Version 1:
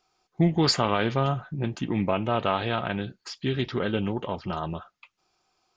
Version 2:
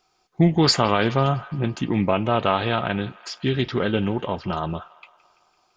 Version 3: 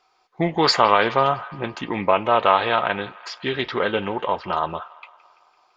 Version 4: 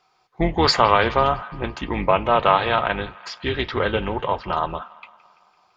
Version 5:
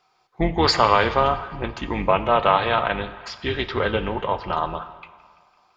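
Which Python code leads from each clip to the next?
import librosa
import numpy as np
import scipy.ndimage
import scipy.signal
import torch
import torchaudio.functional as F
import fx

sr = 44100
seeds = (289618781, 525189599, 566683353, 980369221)

y1 = fx.echo_wet_bandpass(x, sr, ms=168, feedback_pct=62, hz=1600.0, wet_db=-19)
y1 = y1 * librosa.db_to_amplitude(4.5)
y2 = fx.graphic_eq(y1, sr, hz=(125, 500, 1000, 2000, 4000), db=(-4, 8, 12, 9, 7))
y2 = y2 * librosa.db_to_amplitude(-7.5)
y3 = fx.octave_divider(y2, sr, octaves=2, level_db=-1.0)
y4 = fx.rev_plate(y3, sr, seeds[0], rt60_s=1.5, hf_ratio=0.85, predelay_ms=0, drr_db=12.5)
y4 = y4 * librosa.db_to_amplitude(-1.0)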